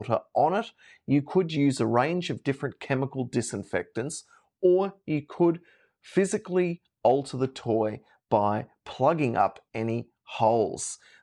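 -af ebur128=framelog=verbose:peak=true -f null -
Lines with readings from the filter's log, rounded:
Integrated loudness:
  I:         -27.1 LUFS
  Threshold: -37.5 LUFS
Loudness range:
  LRA:         1.8 LU
  Threshold: -47.6 LUFS
  LRA low:   -28.7 LUFS
  LRA high:  -26.9 LUFS
True peak:
  Peak:       -8.3 dBFS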